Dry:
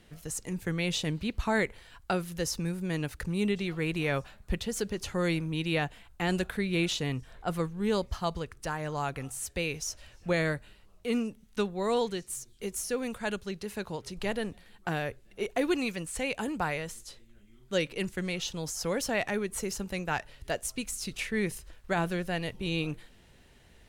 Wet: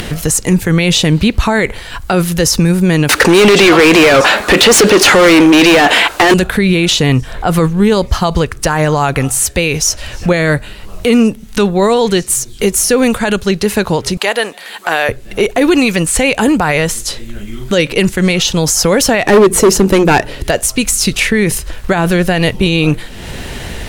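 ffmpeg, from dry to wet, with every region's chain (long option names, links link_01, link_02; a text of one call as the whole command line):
ffmpeg -i in.wav -filter_complex "[0:a]asettb=1/sr,asplit=3[link_01][link_02][link_03];[link_01]atrim=end=3.094[link_04];[link_02]atrim=start=3.09:end=6.34,asetpts=PTS-STARTPTS,afade=type=in:duration=0.004:curve=qsin,afade=type=out:start_time=3.246:duration=0.004:curve=qsin,lowshelf=frequency=200:width_type=q:width=1.5:gain=-11.5,asplit=2[link_05][link_06];[link_06]highpass=frequency=720:poles=1,volume=33dB,asoftclip=type=tanh:threshold=-14.5dB[link_07];[link_05][link_07]amix=inputs=2:normalize=0,lowpass=frequency=3600:poles=1,volume=-6dB[link_08];[link_03]atrim=start=6.336[link_09];[link_04][link_08]acrossfade=duration=0.004:curve1=hsin:curve2=qsin[link_10];[link_10][link_09]acrossfade=duration=0.004:curve1=qsin:curve2=hsin,asettb=1/sr,asplit=3[link_11][link_12][link_13];[link_11]atrim=end=14.174[link_14];[link_12]atrim=start=14.17:end=15.09,asetpts=PTS-STARTPTS,afade=type=in:duration=0.004:curve=qsin,afade=type=out:start_time=0.916:duration=0.004:curve=qsin,highpass=610,bandreject=frequency=5500:width=19[link_15];[link_13]atrim=start=15.086[link_16];[link_14][link_15]acrossfade=duration=0.004:curve1=hsin:curve2=qsin[link_17];[link_17][link_16]acrossfade=duration=0.004:curve1=qsin:curve2=hsin,asettb=1/sr,asplit=3[link_18][link_19][link_20];[link_18]atrim=end=19.264[link_21];[link_19]atrim=start=19.26:end=20.44,asetpts=PTS-STARTPTS,afade=type=in:duration=0.004:curve=qsin,afade=type=out:start_time=1.176:duration=0.004:curve=qsin,equalizer=frequency=340:width=1.1:gain=12.5,volume=25dB,asoftclip=hard,volume=-25dB,bandreject=frequency=60:width_type=h:width=6,bandreject=frequency=120:width_type=h:width=6,bandreject=frequency=180:width_type=h:width=6,bandreject=frequency=240:width_type=h:width=6[link_22];[link_20]atrim=start=20.436[link_23];[link_21][link_22]acrossfade=duration=0.004:curve1=hsin:curve2=qsin[link_24];[link_24][link_23]acrossfade=duration=0.004:curve1=qsin:curve2=hsin,acompressor=mode=upward:threshold=-37dB:ratio=2.5,alimiter=level_in=25.5dB:limit=-1dB:release=50:level=0:latency=1,volume=-1dB" out.wav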